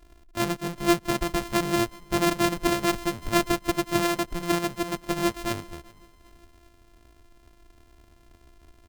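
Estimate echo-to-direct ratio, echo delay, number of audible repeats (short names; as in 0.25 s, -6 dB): -23.0 dB, 0.387 s, 2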